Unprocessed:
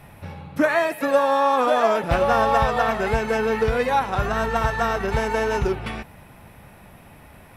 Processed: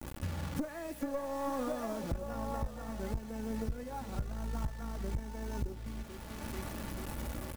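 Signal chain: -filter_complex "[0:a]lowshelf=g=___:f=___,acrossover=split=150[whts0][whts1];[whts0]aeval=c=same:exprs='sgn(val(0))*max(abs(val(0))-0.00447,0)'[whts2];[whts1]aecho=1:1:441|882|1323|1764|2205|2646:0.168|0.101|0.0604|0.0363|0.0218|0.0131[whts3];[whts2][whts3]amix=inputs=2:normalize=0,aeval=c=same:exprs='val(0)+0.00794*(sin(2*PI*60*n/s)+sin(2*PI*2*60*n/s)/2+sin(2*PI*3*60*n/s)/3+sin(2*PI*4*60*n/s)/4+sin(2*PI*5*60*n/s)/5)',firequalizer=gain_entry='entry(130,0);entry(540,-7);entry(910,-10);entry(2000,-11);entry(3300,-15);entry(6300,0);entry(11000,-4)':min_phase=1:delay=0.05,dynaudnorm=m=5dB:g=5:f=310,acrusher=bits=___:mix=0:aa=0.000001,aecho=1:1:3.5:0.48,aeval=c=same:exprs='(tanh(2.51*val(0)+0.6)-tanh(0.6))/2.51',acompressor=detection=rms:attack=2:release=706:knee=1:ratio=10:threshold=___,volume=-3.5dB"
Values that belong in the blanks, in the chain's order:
11, 270, 5, -25dB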